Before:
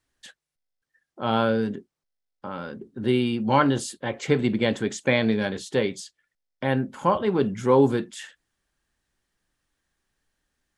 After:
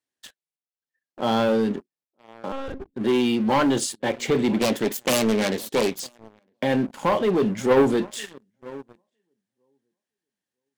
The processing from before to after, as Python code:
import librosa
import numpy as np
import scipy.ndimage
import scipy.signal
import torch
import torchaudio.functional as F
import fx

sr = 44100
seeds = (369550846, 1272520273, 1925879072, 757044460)

p1 = fx.self_delay(x, sr, depth_ms=0.8, at=(4.59, 6.0))
p2 = scipy.signal.sosfilt(scipy.signal.butter(2, 190.0, 'highpass', fs=sr, output='sos'), p1)
p3 = fx.peak_eq(p2, sr, hz=1300.0, db=-6.0, octaves=0.66)
p4 = p3 + fx.echo_filtered(p3, sr, ms=958, feedback_pct=17, hz=1300.0, wet_db=-24, dry=0)
p5 = fx.lpc_monotone(p4, sr, seeds[0], pitch_hz=270.0, order=10, at=(2.52, 2.94))
p6 = fx.leveller(p5, sr, passes=3)
p7 = fx.level_steps(p6, sr, step_db=11)
p8 = p6 + (p7 * 10.0 ** (-2.5 / 20.0))
y = p8 * 10.0 ** (-8.0 / 20.0)